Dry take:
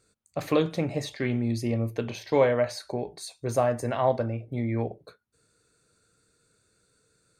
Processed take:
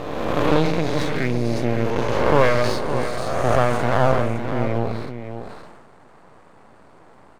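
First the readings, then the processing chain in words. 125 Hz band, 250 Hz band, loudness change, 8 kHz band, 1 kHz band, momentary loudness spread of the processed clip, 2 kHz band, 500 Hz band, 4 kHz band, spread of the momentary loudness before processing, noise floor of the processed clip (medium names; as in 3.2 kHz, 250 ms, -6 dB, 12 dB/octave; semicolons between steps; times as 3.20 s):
+7.0 dB, +6.0 dB, +6.5 dB, +3.5 dB, +10.0 dB, 11 LU, +11.0 dB, +6.0 dB, +8.0 dB, 11 LU, -49 dBFS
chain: reverse spectral sustain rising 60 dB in 2.01 s; low-pass 2.8 kHz 6 dB/octave; band noise 88–1100 Hz -52 dBFS; dynamic bell 1.5 kHz, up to +5 dB, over -40 dBFS, Q 2.2; half-wave rectifier; delay 562 ms -9.5 dB; decay stretcher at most 35 dB/s; trim +5 dB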